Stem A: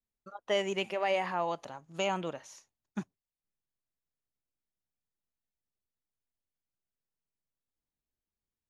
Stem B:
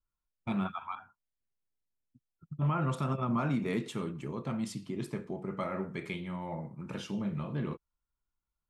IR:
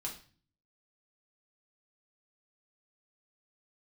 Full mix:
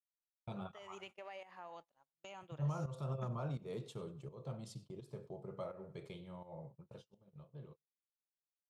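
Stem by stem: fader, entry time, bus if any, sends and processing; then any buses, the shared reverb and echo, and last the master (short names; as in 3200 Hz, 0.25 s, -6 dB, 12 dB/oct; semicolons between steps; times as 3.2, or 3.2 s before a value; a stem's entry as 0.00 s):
-12.0 dB, 0.25 s, send -21.5 dB, echo send -19.5 dB, low shelf 320 Hz -7.5 dB; compressor 6:1, threshold -35 dBFS, peak gain reduction 9.5 dB
6.66 s -11.5 dB -> 7.25 s -20.5 dB, 0.00 s, no send, echo send -22 dB, graphic EQ 125/250/500/2000/4000 Hz +9/-12/+10/-11/+5 dB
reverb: on, RT60 0.40 s, pre-delay 4 ms
echo: feedback echo 96 ms, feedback 41%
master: gate -53 dBFS, range -30 dB; pump 84 bpm, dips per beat 1, -13 dB, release 0.297 s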